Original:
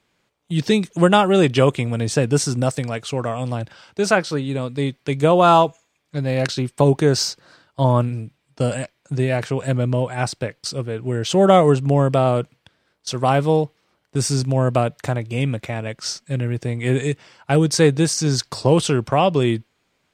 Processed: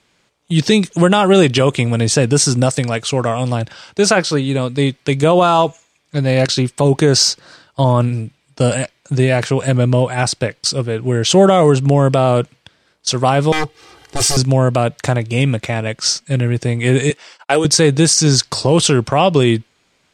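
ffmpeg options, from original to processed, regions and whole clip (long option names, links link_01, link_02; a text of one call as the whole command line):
ffmpeg -i in.wav -filter_complex "[0:a]asettb=1/sr,asplit=3[link_01][link_02][link_03];[link_01]atrim=end=13.524[link_04];[link_02]atrim=start=13.52:end=14.37,asetpts=PTS-STARTPTS,afade=type=in:duration=0.004:curve=qsin,afade=type=out:start_time=0.846:duration=0.004:curve=qsin,aeval=exprs='0.0944*(abs(mod(val(0)/0.0944+3,4)-2)-1)':channel_layout=same,aecho=1:1:2.5:0.77,atrim=end_sample=37485,acompressor=mode=upward:threshold=-37dB:ratio=2.5:attack=3.2:release=140:knee=2.83:detection=peak[link_05];[link_03]atrim=start=14.366[link_06];[link_04][link_05]acrossfade=duration=0.004:curve1=hsin:curve2=qsin[link_07];[link_07][link_06]acrossfade=duration=0.004:curve1=qsin:curve2=hsin,asettb=1/sr,asplit=3[link_08][link_09][link_10];[link_08]atrim=end=17.104[link_11];[link_09]atrim=start=17.1:end=17.65,asetpts=PTS-STARTPTS,afade=type=in:duration=0.004:curve=qsin,afade=type=out:start_time=0.546:duration=0.004:curve=qsin,highpass=430,agate=range=-29dB:threshold=-51dB:ratio=16:release=100:detection=peak[link_12];[link_10]atrim=start=17.646[link_13];[link_11][link_12]acrossfade=duration=0.004:curve1=hsin:curve2=qsin[link_14];[link_14][link_13]acrossfade=duration=0.004:curve1=qsin:curve2=hsin,lowpass=9000,highshelf=frequency=4000:gain=7,alimiter=level_in=7.5dB:limit=-1dB:release=50:level=0:latency=1,volume=-1dB" out.wav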